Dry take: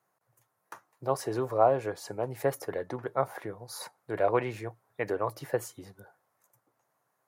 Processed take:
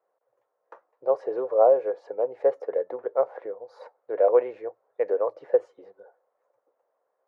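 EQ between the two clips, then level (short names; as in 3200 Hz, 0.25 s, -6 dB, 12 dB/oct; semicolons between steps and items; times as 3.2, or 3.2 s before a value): resonant high-pass 500 Hz, resonance Q 4.9; tape spacing loss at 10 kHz 40 dB; -1.0 dB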